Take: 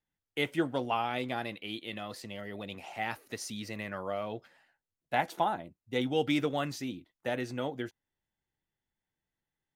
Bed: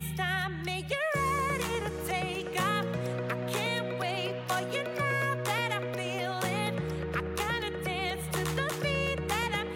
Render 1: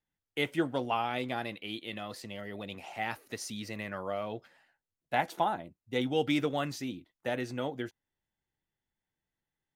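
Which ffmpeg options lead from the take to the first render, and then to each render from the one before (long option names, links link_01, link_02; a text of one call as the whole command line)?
ffmpeg -i in.wav -af anull out.wav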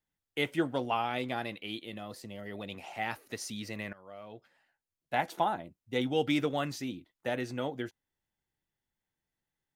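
ffmpeg -i in.wav -filter_complex "[0:a]asettb=1/sr,asplit=3[link_01][link_02][link_03];[link_01]atrim=end=1.854[link_04];[link_02]atrim=start=1.85:end=2.46,asetpts=PTS-STARTPTS,afade=type=in:duration=0.004:curve=qsin,afade=type=out:start_time=0.606:duration=0.004:curve=qsin,equalizer=frequency=2300:width=0.44:gain=-6.5[link_05];[link_03]atrim=start=2.456[link_06];[link_04][link_05]acrossfade=duration=0.004:curve1=hsin:curve2=qsin[link_07];[link_07][link_06]acrossfade=duration=0.004:curve1=qsin:curve2=hsin,asplit=2[link_08][link_09];[link_08]atrim=end=3.93,asetpts=PTS-STARTPTS,afade=type=out:start_time=3.926:duration=0.004:curve=hsin:silence=0.0944061[link_10];[link_09]atrim=start=3.93,asetpts=PTS-STARTPTS,afade=type=in:duration=1.43:silence=0.0944061[link_11];[link_10][link_11]concat=n=2:v=0:a=1" out.wav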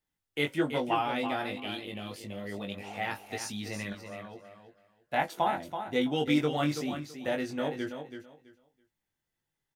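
ffmpeg -i in.wav -filter_complex "[0:a]asplit=2[link_01][link_02];[link_02]adelay=20,volume=-4dB[link_03];[link_01][link_03]amix=inputs=2:normalize=0,asplit=2[link_04][link_05];[link_05]aecho=0:1:330|660|990:0.376|0.0752|0.015[link_06];[link_04][link_06]amix=inputs=2:normalize=0" out.wav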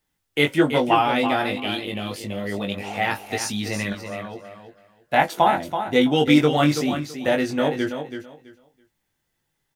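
ffmpeg -i in.wav -af "volume=10.5dB" out.wav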